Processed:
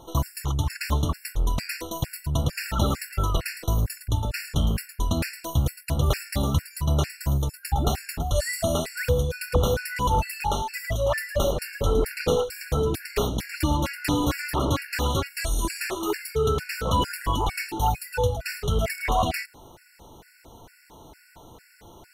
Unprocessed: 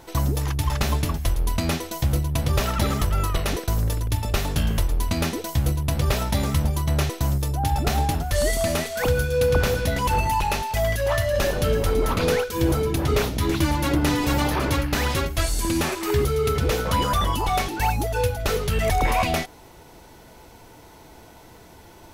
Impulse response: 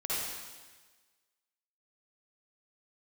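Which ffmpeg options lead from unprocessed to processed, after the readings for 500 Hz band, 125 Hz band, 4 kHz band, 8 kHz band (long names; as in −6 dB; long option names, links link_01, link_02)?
−3.5 dB, −3.0 dB, −3.0 dB, −3.0 dB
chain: -af "afftfilt=real='re*gt(sin(2*PI*2.2*pts/sr)*(1-2*mod(floor(b*sr/1024/1400),2)),0)':imag='im*gt(sin(2*PI*2.2*pts/sr)*(1-2*mod(floor(b*sr/1024/1400),2)),0)':win_size=1024:overlap=0.75"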